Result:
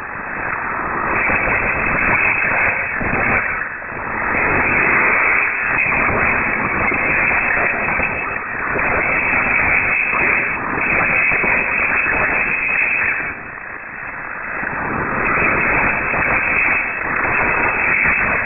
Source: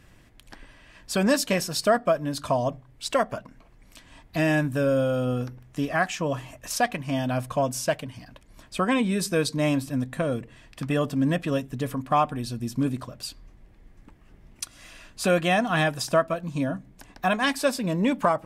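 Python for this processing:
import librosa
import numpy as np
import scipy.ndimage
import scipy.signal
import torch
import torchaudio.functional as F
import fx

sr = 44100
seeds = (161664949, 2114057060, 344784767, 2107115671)

p1 = x + 0.5 * 10.0 ** (-22.5 / 20.0) * np.diff(np.sign(x), prepend=np.sign(x[:1]))
p2 = fx.peak_eq(p1, sr, hz=1100.0, db=10.0, octaves=0.89)
p3 = fx.over_compress(p2, sr, threshold_db=-29.0, ratio=-1.0)
p4 = p2 + (p3 * 10.0 ** (-2.0 / 20.0))
p5 = fx.fold_sine(p4, sr, drive_db=20, ceiling_db=-2.5)
p6 = fx.whisperise(p5, sr, seeds[0])
p7 = fx.brickwall_highpass(p6, sr, low_hz=270.0)
p8 = fx.rev_gated(p7, sr, seeds[1], gate_ms=200, shape='rising', drr_db=3.5)
p9 = fx.freq_invert(p8, sr, carrier_hz=2900)
p10 = fx.pre_swell(p9, sr, db_per_s=23.0)
y = p10 * 10.0 ** (-9.5 / 20.0)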